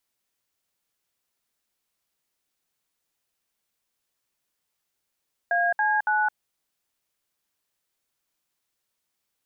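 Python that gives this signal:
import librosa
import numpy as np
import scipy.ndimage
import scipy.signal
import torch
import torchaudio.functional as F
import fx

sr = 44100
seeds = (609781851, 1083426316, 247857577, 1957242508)

y = fx.dtmf(sr, digits='AC9', tone_ms=216, gap_ms=64, level_db=-22.5)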